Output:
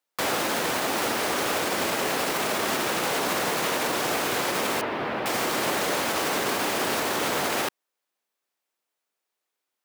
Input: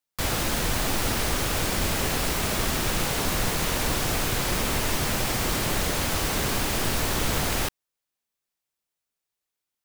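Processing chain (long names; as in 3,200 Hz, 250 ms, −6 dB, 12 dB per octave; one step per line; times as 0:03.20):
high-pass filter 330 Hz 12 dB per octave
high-shelf EQ 2,600 Hz −8 dB
brickwall limiter −24.5 dBFS, peak gain reduction 6 dB
0:04.81–0:05.26: high-frequency loss of the air 380 metres
level +8 dB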